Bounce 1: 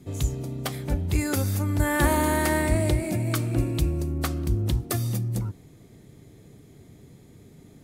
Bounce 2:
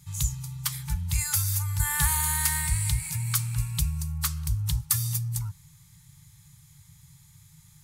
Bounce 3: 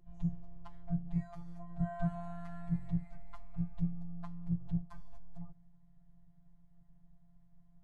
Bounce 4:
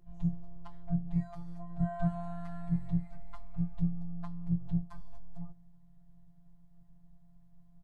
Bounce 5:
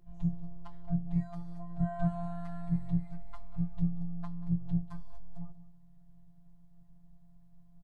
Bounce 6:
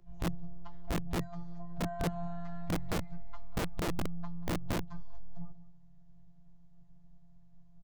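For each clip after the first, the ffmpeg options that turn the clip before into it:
-af "bass=f=250:g=1,treble=f=4000:g=12,afftfilt=real='re*(1-between(b*sr/4096,180,810))':imag='im*(1-between(b*sr/4096,180,810))':win_size=4096:overlap=0.75,adynamicequalizer=threshold=0.01:dfrequency=920:dqfactor=0.95:tfrequency=920:tqfactor=0.95:attack=5:release=100:ratio=0.375:range=2.5:mode=cutabove:tftype=bell,volume=0.668"
-af "lowpass=f=540:t=q:w=4.9,afreqshift=-180,afftfilt=real='hypot(re,im)*cos(PI*b)':imag='0':win_size=1024:overlap=0.75,volume=1.12"
-filter_complex "[0:a]asplit=2[s0][s1];[s1]adelay=23,volume=0.266[s2];[s0][s2]amix=inputs=2:normalize=0,volume=1.26"
-af "aecho=1:1:186:0.141"
-filter_complex "[0:a]asplit=2[s0][s1];[s1]adelay=15,volume=0.251[s2];[s0][s2]amix=inputs=2:normalize=0,aresample=16000,aresample=44100,acrossover=split=160|520[s3][s4][s5];[s3]aeval=exprs='(mod(25.1*val(0)+1,2)-1)/25.1':c=same[s6];[s6][s4][s5]amix=inputs=3:normalize=0"

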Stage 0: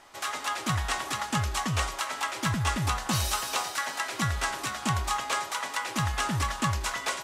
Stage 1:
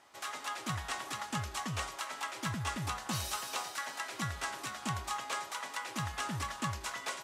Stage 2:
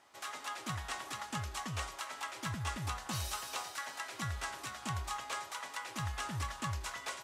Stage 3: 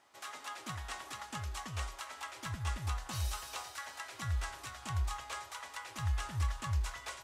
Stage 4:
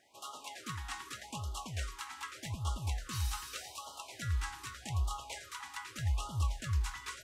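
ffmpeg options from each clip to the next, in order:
-af "highpass=89,volume=0.398"
-af "asubboost=boost=3.5:cutoff=94,volume=0.75"
-af "asubboost=boost=9.5:cutoff=64,volume=0.75"
-af "afftfilt=real='re*(1-between(b*sr/1024,510*pow(2000/510,0.5+0.5*sin(2*PI*0.83*pts/sr))/1.41,510*pow(2000/510,0.5+0.5*sin(2*PI*0.83*pts/sr))*1.41))':imag='im*(1-between(b*sr/1024,510*pow(2000/510,0.5+0.5*sin(2*PI*0.83*pts/sr))/1.41,510*pow(2000/510,0.5+0.5*sin(2*PI*0.83*pts/sr))*1.41))':win_size=1024:overlap=0.75,volume=1.12"

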